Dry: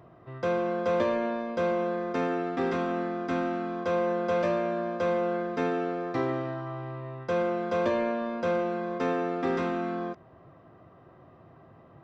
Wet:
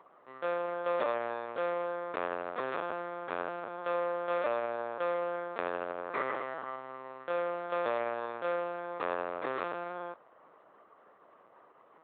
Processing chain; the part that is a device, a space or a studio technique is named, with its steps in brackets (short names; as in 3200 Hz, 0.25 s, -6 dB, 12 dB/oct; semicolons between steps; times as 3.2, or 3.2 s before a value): 6.11–6.76 bell 2000 Hz +6 dB 0.89 oct; talking toy (LPC vocoder at 8 kHz pitch kept; HPF 470 Hz 12 dB/oct; bell 1200 Hz +5 dB 0.52 oct); gain -3 dB